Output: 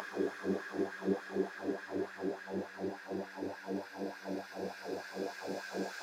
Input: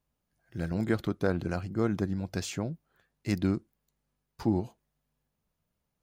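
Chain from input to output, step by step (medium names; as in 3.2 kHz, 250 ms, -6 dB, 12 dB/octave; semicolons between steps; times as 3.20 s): Paulstretch 32×, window 0.50 s, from 2.08 s; LFO high-pass sine 3.4 Hz 350–1600 Hz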